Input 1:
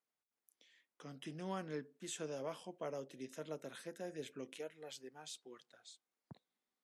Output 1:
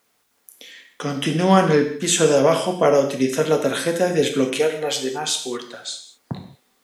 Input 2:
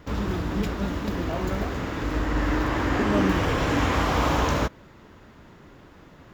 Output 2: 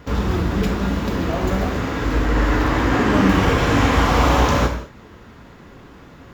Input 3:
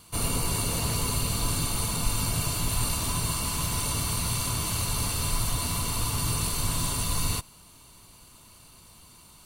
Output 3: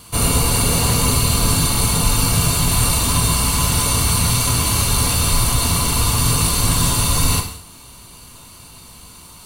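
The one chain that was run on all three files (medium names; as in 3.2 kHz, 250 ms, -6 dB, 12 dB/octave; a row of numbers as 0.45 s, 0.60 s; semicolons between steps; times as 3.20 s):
gated-style reverb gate 240 ms falling, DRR 3.5 dB; peak normalisation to -3 dBFS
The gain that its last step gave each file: +26.0 dB, +5.0 dB, +9.5 dB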